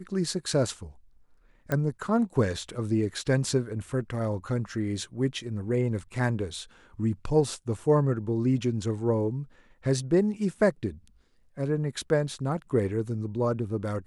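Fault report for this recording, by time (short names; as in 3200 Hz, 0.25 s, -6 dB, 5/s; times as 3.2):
1.72 pop -15 dBFS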